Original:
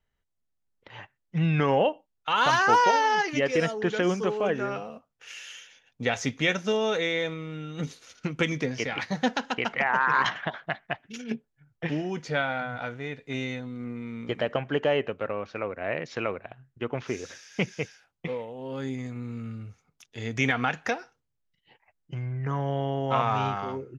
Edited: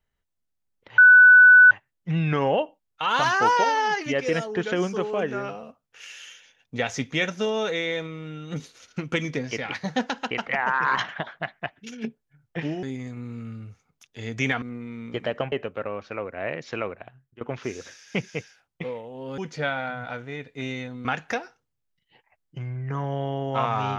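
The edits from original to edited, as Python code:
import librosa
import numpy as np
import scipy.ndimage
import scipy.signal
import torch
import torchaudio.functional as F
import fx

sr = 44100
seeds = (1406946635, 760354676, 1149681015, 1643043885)

y = fx.edit(x, sr, fx.insert_tone(at_s=0.98, length_s=0.73, hz=1490.0, db=-8.0),
    fx.swap(start_s=12.1, length_s=1.67, other_s=18.82, other_length_s=1.79),
    fx.cut(start_s=14.67, length_s=0.29),
    fx.fade_out_to(start_s=16.39, length_s=0.46, curve='qsin', floor_db=-18.5), tone=tone)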